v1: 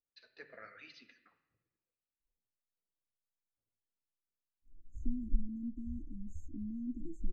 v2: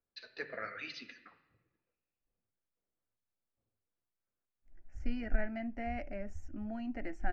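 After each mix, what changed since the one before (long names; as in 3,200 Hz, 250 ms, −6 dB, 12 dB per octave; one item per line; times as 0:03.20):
first voice +10.5 dB
second voice: remove linear-phase brick-wall band-stop 350–6,200 Hz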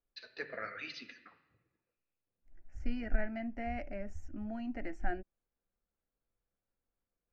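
second voice: entry −2.20 s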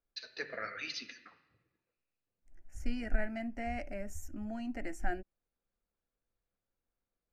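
master: remove high-frequency loss of the air 190 metres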